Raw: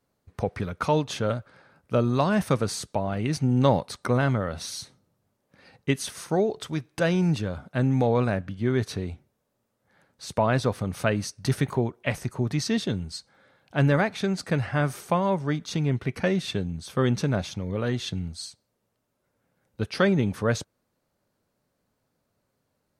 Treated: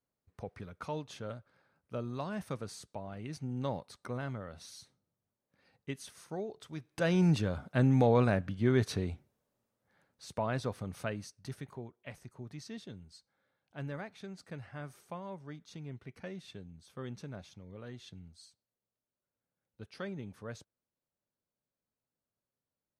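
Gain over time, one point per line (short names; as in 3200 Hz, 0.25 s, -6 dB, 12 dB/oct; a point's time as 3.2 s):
6.65 s -15.5 dB
7.22 s -3 dB
9.03 s -3 dB
10.3 s -11 dB
10.94 s -11 dB
11.63 s -19.5 dB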